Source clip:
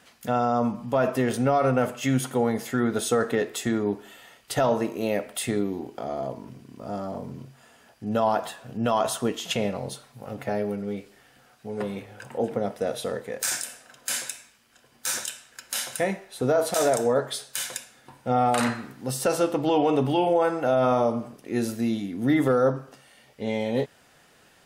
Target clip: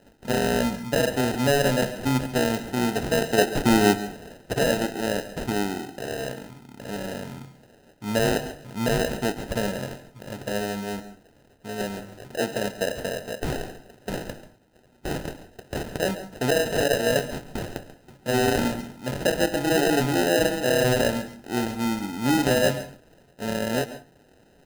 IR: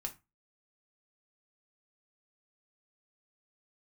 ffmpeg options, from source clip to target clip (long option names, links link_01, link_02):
-filter_complex "[0:a]acrusher=samples=39:mix=1:aa=0.000001,asettb=1/sr,asplit=3[link_01][link_02][link_03];[link_01]atrim=end=3.384[link_04];[link_02]atrim=start=3.38:end=4.54,asetpts=PTS-STARTPTS,afade=type=in:duration=0.004:curve=qsin,afade=type=out:start_time=1.156:duration=0.004:curve=qsin,acontrast=86[link_05];[link_03]atrim=start=4.536[link_06];[link_04][link_05]acrossfade=duration=0.004:curve1=hsin:curve2=qsin[link_07];[link_07][link_06]acrossfade=duration=0.004:curve1=qsin:curve2=hsin,asplit=2[link_08][link_09];[1:a]atrim=start_sample=2205,asetrate=37485,aresample=44100,adelay=137[link_10];[link_09][link_10]afir=irnorm=-1:irlink=0,volume=-13dB[link_11];[link_08][link_11]amix=inputs=2:normalize=0"